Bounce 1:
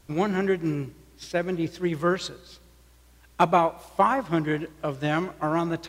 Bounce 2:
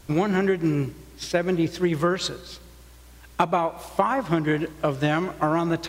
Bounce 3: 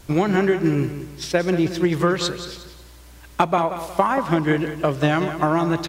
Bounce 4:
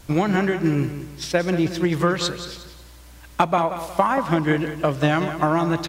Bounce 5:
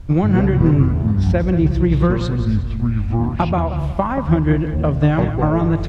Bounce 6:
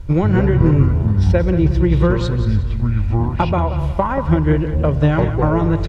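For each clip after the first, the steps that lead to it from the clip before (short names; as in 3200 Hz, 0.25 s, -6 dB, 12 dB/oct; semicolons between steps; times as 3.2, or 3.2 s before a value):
compressor 12:1, threshold -25 dBFS, peak gain reduction 12 dB; gain +7.5 dB
feedback echo 0.18 s, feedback 36%, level -11 dB; gain +3 dB
bell 390 Hz -5.5 dB 0.24 oct
echoes that change speed 92 ms, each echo -7 st, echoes 3, each echo -6 dB; RIAA curve playback; gain -2.5 dB
comb 2.1 ms, depth 38%; gain +1 dB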